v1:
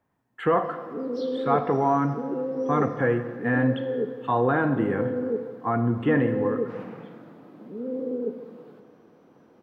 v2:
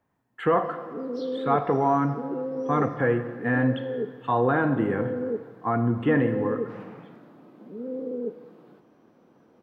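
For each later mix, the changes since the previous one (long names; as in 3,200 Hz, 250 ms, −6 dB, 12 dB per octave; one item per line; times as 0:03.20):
background: send off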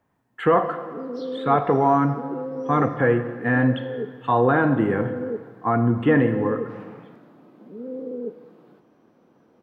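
speech +4.0 dB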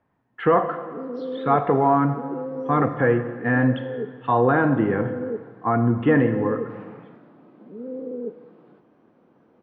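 master: add low-pass filter 3,100 Hz 12 dB per octave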